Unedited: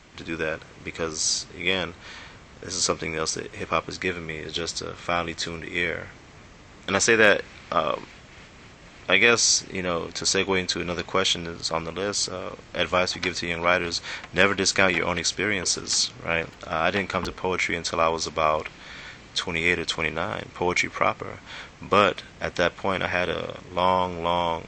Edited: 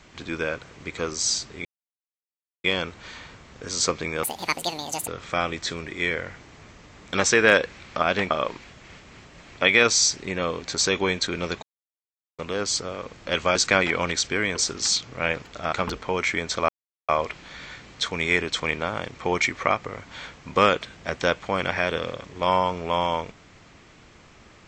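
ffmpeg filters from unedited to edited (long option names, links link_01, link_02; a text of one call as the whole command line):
ffmpeg -i in.wav -filter_complex "[0:a]asplit=12[link_01][link_02][link_03][link_04][link_05][link_06][link_07][link_08][link_09][link_10][link_11][link_12];[link_01]atrim=end=1.65,asetpts=PTS-STARTPTS,afade=type=out:start_time=1.646:duration=0.004:curve=hsin,apad=pad_dur=0.99[link_13];[link_02]atrim=start=1.65:end=3.244,asetpts=PTS-STARTPTS,afade=type=in:duration=0.004:curve=hsin[link_14];[link_03]atrim=start=3.24:end=4.83,asetpts=PTS-STARTPTS,asetrate=82908,aresample=44100,atrim=end_sample=37297,asetpts=PTS-STARTPTS[link_15];[link_04]atrim=start=4.826:end=7.782[link_16];[link_05]atrim=start=16.798:end=17.082[link_17];[link_06]atrim=start=7.778:end=11.1,asetpts=PTS-STARTPTS,afade=type=out:start_time=3.318:duration=0.004:curve=hsin[link_18];[link_07]atrim=start=11.1:end=11.86,asetpts=PTS-STARTPTS,volume=0[link_19];[link_08]atrim=start=11.86:end=13.032,asetpts=PTS-STARTPTS,afade=type=in:duration=0.004:curve=hsin[link_20];[link_09]atrim=start=14.628:end=16.802[link_21];[link_10]atrim=start=17.078:end=18.04,asetpts=PTS-STARTPTS,afade=type=out:start_time=0.958:duration=0.004:curve=hsin[link_22];[link_11]atrim=start=18.04:end=18.44,asetpts=PTS-STARTPTS,volume=0[link_23];[link_12]atrim=start=18.44,asetpts=PTS-STARTPTS,afade=type=in:duration=0.004:curve=hsin[link_24];[link_13][link_14]concat=n=2:v=0:a=1[link_25];[link_25][link_15]acrossfade=duration=0.004:curve1=hsin:curve2=hsin[link_26];[link_26][link_16]acrossfade=duration=0.004:curve1=hsin:curve2=hsin[link_27];[link_27][link_17]acrossfade=duration=0.004:curve1=hsin:curve2=hsin[link_28];[link_18][link_19][link_20]concat=n=3:v=0:a=1[link_29];[link_28][link_29]acrossfade=duration=0.004:curve1=hsin:curve2=hsin[link_30];[link_30][link_21]acrossfade=duration=0.004:curve1=hsin:curve2=hsin[link_31];[link_22][link_23][link_24]concat=n=3:v=0:a=1[link_32];[link_31][link_32]acrossfade=duration=0.004:curve1=hsin:curve2=hsin" out.wav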